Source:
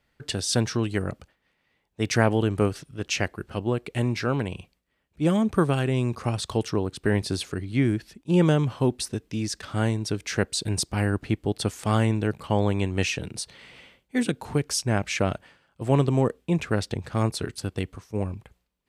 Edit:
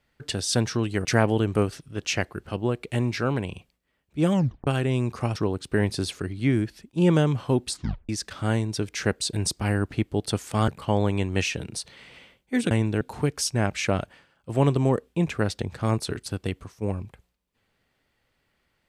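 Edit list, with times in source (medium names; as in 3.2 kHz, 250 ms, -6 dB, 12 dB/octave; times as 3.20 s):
1.05–2.08 s: delete
5.36 s: tape stop 0.34 s
6.39–6.68 s: delete
9.01 s: tape stop 0.40 s
12.00–12.30 s: move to 14.33 s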